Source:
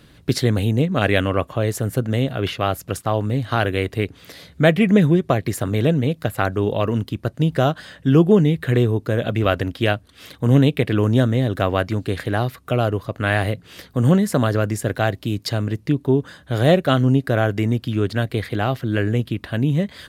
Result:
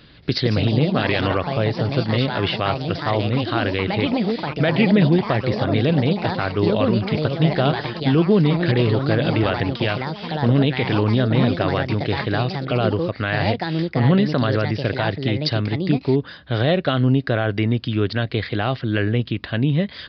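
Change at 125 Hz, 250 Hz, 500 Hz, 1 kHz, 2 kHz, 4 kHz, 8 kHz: −0.5 dB, 0.0 dB, −0.5 dB, +0.5 dB, +0.5 dB, +3.5 dB, below −15 dB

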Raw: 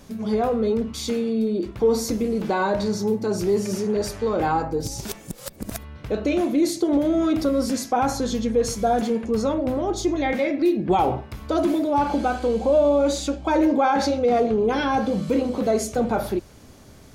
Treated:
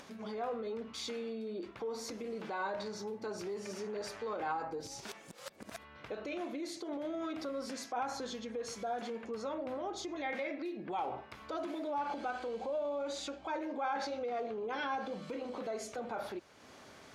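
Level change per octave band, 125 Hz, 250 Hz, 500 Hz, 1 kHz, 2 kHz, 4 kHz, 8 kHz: −24.0, −20.5, −17.0, −14.0, −11.0, −12.0, −15.5 decibels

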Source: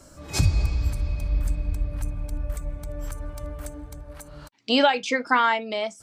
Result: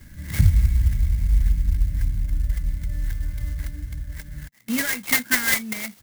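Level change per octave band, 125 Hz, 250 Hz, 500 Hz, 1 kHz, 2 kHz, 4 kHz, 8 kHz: +5.0, −1.0, −15.0, −14.5, +2.5, −3.0, +9.0 decibels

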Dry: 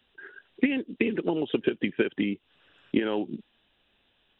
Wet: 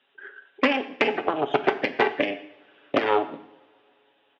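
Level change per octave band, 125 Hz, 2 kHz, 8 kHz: −4.5 dB, +7.5 dB, can't be measured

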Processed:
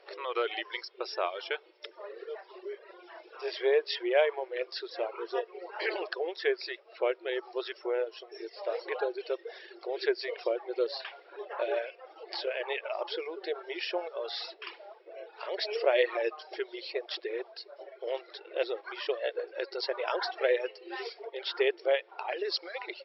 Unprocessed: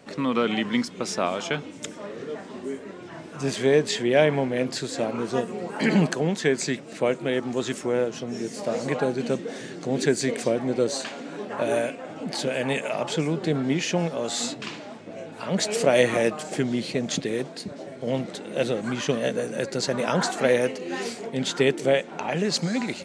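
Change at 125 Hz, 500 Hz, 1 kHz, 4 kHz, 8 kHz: below −40 dB, −6.5 dB, −6.5 dB, −6.0 dB, below −35 dB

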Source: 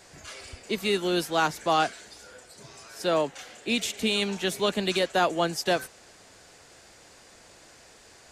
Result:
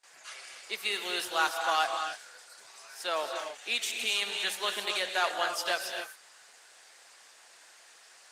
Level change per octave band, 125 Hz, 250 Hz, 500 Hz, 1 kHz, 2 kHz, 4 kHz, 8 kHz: below −25 dB, −19.0 dB, −9.5 dB, −3.5 dB, 0.0 dB, −1.0 dB, −1.5 dB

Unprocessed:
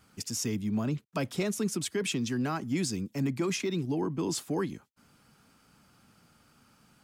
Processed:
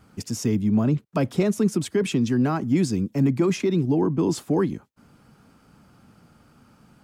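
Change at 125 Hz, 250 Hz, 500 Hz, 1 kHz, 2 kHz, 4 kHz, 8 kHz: +10.0, +9.5, +9.0, +6.5, +2.5, 0.0, −0.5 decibels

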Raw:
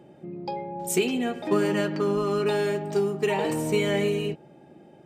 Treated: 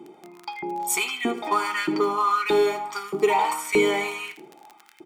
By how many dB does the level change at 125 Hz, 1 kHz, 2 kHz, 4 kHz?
−12.5, +9.0, +5.5, +3.5 decibels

